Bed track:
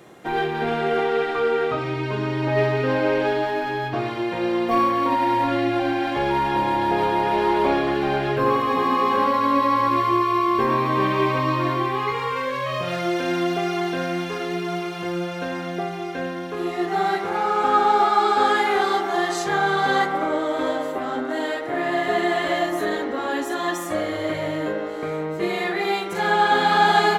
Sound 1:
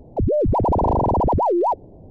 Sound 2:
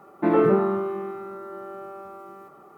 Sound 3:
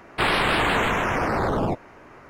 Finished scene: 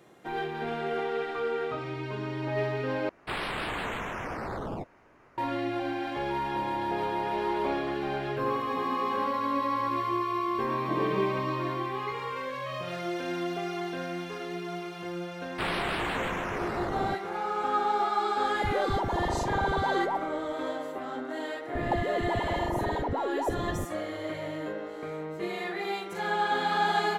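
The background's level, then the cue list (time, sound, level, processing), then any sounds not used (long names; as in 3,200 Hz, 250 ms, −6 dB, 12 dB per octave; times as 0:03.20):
bed track −9.5 dB
0:03.09: overwrite with 3 −12 dB
0:10.65: mix in 2 −13 dB + Butterworth low-pass 770 Hz
0:15.40: mix in 3 −10 dB
0:18.44: mix in 1 −12.5 dB
0:21.75: mix in 1 −1 dB + compressor whose output falls as the input rises −26 dBFS, ratio −0.5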